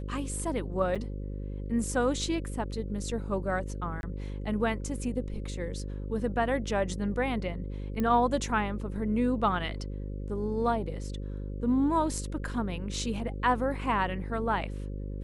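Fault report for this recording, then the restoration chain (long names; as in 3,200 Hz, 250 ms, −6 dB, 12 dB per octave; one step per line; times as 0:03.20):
mains buzz 50 Hz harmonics 11 −36 dBFS
0:00.95–0:00.96: drop-out 6.4 ms
0:04.01–0:04.03: drop-out 21 ms
0:08.00: click −19 dBFS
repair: click removal
hum removal 50 Hz, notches 11
repair the gap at 0:00.95, 6.4 ms
repair the gap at 0:04.01, 21 ms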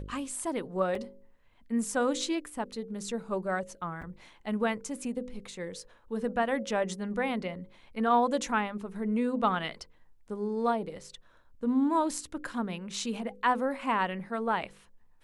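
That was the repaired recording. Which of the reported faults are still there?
none of them is left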